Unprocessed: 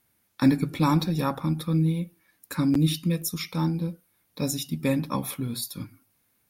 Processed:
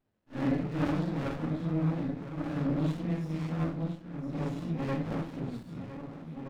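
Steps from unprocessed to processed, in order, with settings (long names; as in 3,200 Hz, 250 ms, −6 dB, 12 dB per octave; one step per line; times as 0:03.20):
random phases in long frames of 200 ms
Chebyshev low-pass filter 1,900 Hz, order 2
low-shelf EQ 230 Hz −6.5 dB
slap from a distant wall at 270 metres, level −8 dB
soft clipping −20 dBFS, distortion −18 dB
on a send: single-tap delay 1,008 ms −13 dB
on the sum: windowed peak hold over 33 samples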